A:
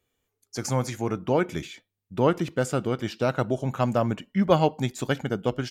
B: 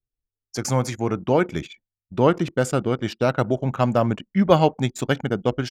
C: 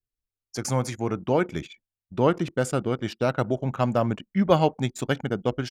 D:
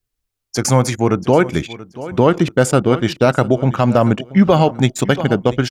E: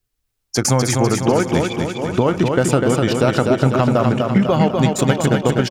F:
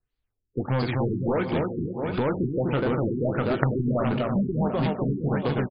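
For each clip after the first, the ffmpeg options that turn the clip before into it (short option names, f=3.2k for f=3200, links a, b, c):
-af "anlmdn=0.631,volume=4dB"
-af "adynamicequalizer=threshold=0.00126:dfrequency=9500:dqfactor=6.7:tfrequency=9500:tqfactor=6.7:attack=5:release=100:ratio=0.375:range=3:mode=boostabove:tftype=bell,volume=-3.5dB"
-af "aecho=1:1:682|1364:0.126|0.0302,alimiter=level_in=13dB:limit=-1dB:release=50:level=0:latency=1,volume=-1dB"
-filter_complex "[0:a]acompressor=threshold=-15dB:ratio=6,asplit=2[a][b];[b]aecho=0:1:249|498|747|996|1245|1494|1743:0.631|0.347|0.191|0.105|0.0577|0.0318|0.0175[c];[a][c]amix=inputs=2:normalize=0,volume=2.5dB"
-filter_complex "[0:a]asplit=2[a][b];[b]adelay=21,volume=-13.5dB[c];[a][c]amix=inputs=2:normalize=0,aeval=exprs='0.891*(cos(1*acos(clip(val(0)/0.891,-1,1)))-cos(1*PI/2))+0.447*(cos(3*acos(clip(val(0)/0.891,-1,1)))-cos(3*PI/2))+0.2*(cos(5*acos(clip(val(0)/0.891,-1,1)))-cos(5*PI/2))':c=same,afftfilt=real='re*lt(b*sr/1024,410*pow(5100/410,0.5+0.5*sin(2*PI*1.5*pts/sr)))':imag='im*lt(b*sr/1024,410*pow(5100/410,0.5+0.5*sin(2*PI*1.5*pts/sr)))':win_size=1024:overlap=0.75,volume=-1dB"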